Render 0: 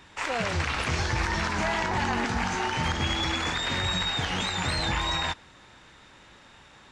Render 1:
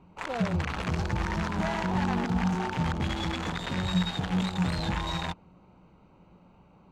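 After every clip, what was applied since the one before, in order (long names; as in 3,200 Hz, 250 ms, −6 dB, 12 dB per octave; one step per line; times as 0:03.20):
adaptive Wiener filter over 25 samples
parametric band 180 Hz +13.5 dB 0.25 octaves
level −1.5 dB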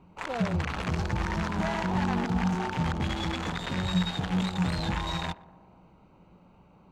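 feedback echo with a band-pass in the loop 121 ms, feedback 69%, band-pass 670 Hz, level −18 dB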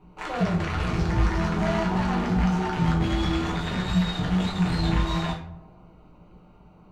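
rectangular room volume 49 cubic metres, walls mixed, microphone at 0.98 metres
level −2.5 dB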